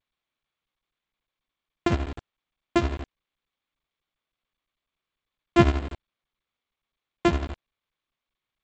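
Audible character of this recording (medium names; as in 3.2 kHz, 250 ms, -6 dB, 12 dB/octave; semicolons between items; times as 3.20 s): a buzz of ramps at a fixed pitch in blocks of 128 samples; tremolo triangle 12 Hz, depth 80%; a quantiser's noise floor 6-bit, dither none; G.722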